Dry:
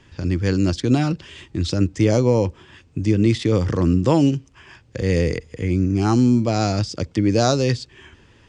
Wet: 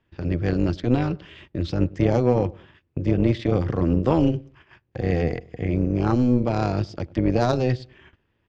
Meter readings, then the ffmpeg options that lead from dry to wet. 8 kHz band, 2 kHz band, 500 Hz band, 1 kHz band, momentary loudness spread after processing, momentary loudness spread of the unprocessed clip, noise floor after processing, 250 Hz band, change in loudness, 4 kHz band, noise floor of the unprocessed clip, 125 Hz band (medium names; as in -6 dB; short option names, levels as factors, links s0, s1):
under -15 dB, -4.0 dB, -2.5 dB, -2.0 dB, 9 LU, 10 LU, -71 dBFS, -3.5 dB, -3.5 dB, -10.0 dB, -53 dBFS, -3.5 dB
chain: -filter_complex "[0:a]asplit=2[s0][s1];[s1]adelay=101,lowpass=f=1100:p=1,volume=0.0794,asplit=2[s2][s3];[s3]adelay=101,lowpass=f=1100:p=1,volume=0.33[s4];[s2][s4]amix=inputs=2:normalize=0[s5];[s0][s5]amix=inputs=2:normalize=0,tremolo=f=250:d=0.71,lowpass=3000,agate=range=0.178:threshold=0.00447:ratio=16:detection=peak,aeval=exprs='0.596*(cos(1*acos(clip(val(0)/0.596,-1,1)))-cos(1*PI/2))+0.0119*(cos(8*acos(clip(val(0)/0.596,-1,1)))-cos(8*PI/2))':c=same"